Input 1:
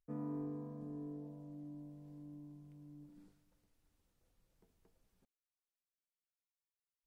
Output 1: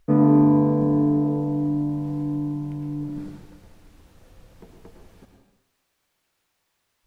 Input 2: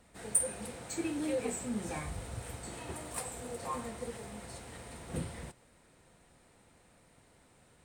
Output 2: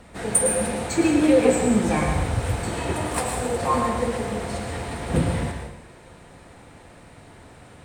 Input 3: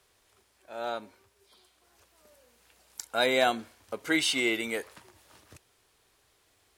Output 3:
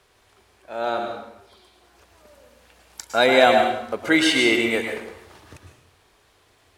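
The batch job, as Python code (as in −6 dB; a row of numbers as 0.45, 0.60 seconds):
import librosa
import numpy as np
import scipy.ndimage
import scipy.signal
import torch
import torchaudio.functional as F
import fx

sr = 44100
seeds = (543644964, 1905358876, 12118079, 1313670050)

y = fx.high_shelf(x, sr, hz=5300.0, db=-10.0)
y = fx.rev_plate(y, sr, seeds[0], rt60_s=0.8, hf_ratio=0.85, predelay_ms=95, drr_db=3.0)
y = y * 10.0 ** (-24 / 20.0) / np.sqrt(np.mean(np.square(y)))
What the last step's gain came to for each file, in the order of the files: +25.5, +16.0, +9.0 decibels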